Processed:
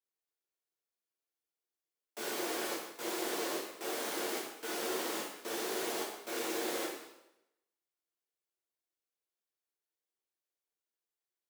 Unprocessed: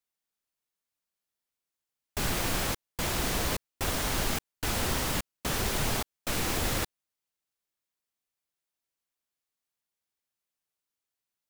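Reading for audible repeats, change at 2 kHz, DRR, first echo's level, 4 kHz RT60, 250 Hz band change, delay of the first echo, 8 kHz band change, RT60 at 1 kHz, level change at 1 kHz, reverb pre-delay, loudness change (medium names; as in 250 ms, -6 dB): no echo, -6.5 dB, -5.5 dB, no echo, 0.80 s, -5.0 dB, no echo, -7.5 dB, 0.85 s, -5.5 dB, 7 ms, -6.5 dB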